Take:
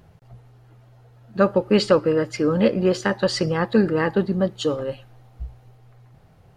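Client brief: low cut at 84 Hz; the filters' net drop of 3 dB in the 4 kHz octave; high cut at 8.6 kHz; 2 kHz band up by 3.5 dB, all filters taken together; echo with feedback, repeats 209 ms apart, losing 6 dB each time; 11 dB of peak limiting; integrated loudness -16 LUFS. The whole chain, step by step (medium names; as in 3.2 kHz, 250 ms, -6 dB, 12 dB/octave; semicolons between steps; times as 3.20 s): high-pass 84 Hz; low-pass 8.6 kHz; peaking EQ 2 kHz +5.5 dB; peaking EQ 4 kHz -5.5 dB; peak limiter -14 dBFS; feedback delay 209 ms, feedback 50%, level -6 dB; trim +8 dB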